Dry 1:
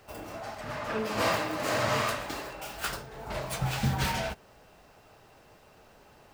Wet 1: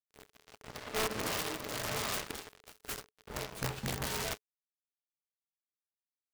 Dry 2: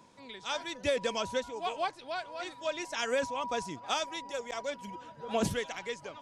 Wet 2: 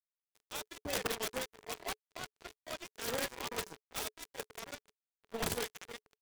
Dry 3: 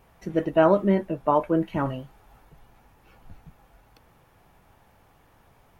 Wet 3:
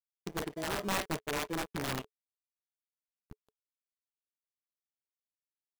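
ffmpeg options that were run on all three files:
-filter_complex "[0:a]acrossover=split=580[a][b];[b]adelay=50[c];[a][c]amix=inputs=2:normalize=0,asplit=2[d][e];[e]acrusher=samples=33:mix=1:aa=0.000001,volume=-7.5dB[f];[d][f]amix=inputs=2:normalize=0,aeval=exprs='sgn(val(0))*max(abs(val(0))-0.02,0)':c=same,areverse,acompressor=threshold=-33dB:ratio=10,areverse,equalizer=f=430:w=7.8:g=9,acontrast=62,aeval=exprs='(mod(13.3*val(0)+1,2)-1)/13.3':c=same,tremolo=f=0.9:d=0.3,volume=-3dB"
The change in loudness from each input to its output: -5.5, -5.5, -12.5 LU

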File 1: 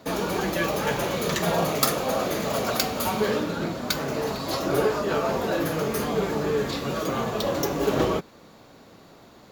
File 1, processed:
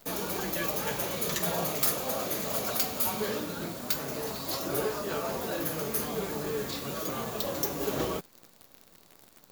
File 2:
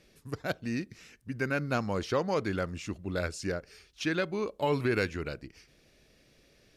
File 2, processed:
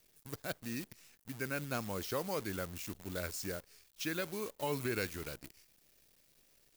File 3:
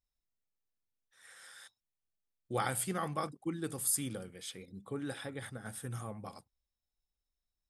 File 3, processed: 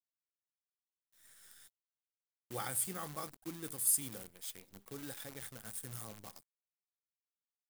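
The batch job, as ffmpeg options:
-af "acrusher=bits=8:dc=4:mix=0:aa=0.000001,aemphasis=mode=production:type=50kf,asoftclip=type=hard:threshold=-12dB,volume=-8.5dB"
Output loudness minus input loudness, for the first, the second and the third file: -5.0, -7.0, -0.5 LU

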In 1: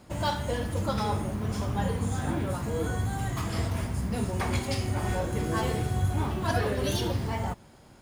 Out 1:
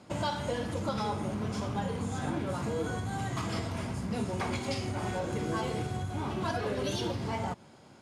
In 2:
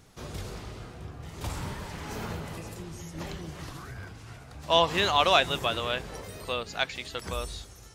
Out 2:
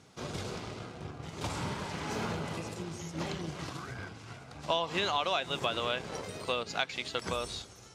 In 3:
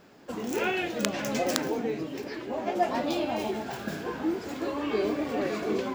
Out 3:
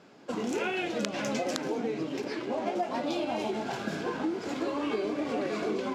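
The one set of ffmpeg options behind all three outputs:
-filter_complex "[0:a]asplit=2[a][b];[b]acrusher=bits=5:mix=0:aa=0.5,volume=-9dB[c];[a][c]amix=inputs=2:normalize=0,bandreject=f=1.8k:w=15,acompressor=threshold=-27dB:ratio=8,highpass=120,lowpass=7.8k"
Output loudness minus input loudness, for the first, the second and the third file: -4.0, -6.5, -2.0 LU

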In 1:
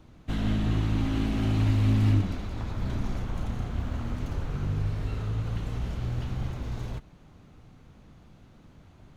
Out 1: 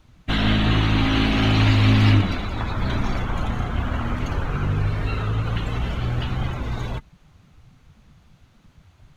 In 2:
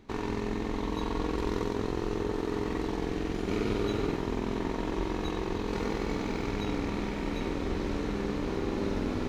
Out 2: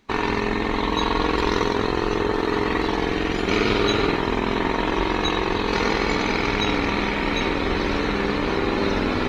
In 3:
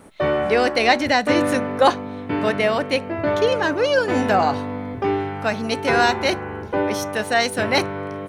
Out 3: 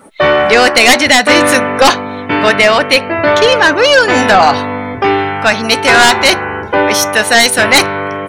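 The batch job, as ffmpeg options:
-af "tiltshelf=f=730:g=-6.5,afftdn=nr=15:nf=-44,aeval=exprs='1.33*sin(PI/2*3.98*val(0)/1.33)':c=same,volume=-3.5dB"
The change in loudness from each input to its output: +7.5, +10.0, +11.5 LU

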